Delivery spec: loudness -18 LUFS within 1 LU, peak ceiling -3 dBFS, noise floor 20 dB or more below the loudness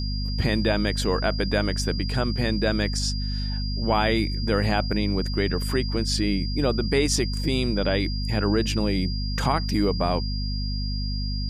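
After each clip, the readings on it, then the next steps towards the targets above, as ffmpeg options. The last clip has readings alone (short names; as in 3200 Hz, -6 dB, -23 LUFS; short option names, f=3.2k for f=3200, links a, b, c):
hum 50 Hz; harmonics up to 250 Hz; hum level -25 dBFS; steady tone 4800 Hz; tone level -34 dBFS; loudness -25.0 LUFS; peak -9.0 dBFS; loudness target -18.0 LUFS
-> -af "bandreject=f=50:t=h:w=6,bandreject=f=100:t=h:w=6,bandreject=f=150:t=h:w=6,bandreject=f=200:t=h:w=6,bandreject=f=250:t=h:w=6"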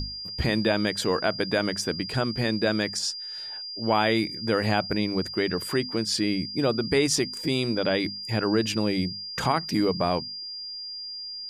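hum none; steady tone 4800 Hz; tone level -34 dBFS
-> -af "bandreject=f=4.8k:w=30"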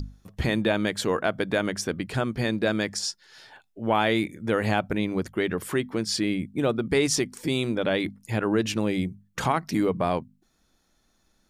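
steady tone none; loudness -26.5 LUFS; peak -9.5 dBFS; loudness target -18.0 LUFS
-> -af "volume=8.5dB,alimiter=limit=-3dB:level=0:latency=1"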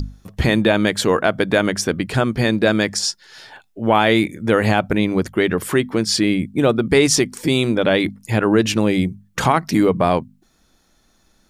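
loudness -18.0 LUFS; peak -3.0 dBFS; noise floor -60 dBFS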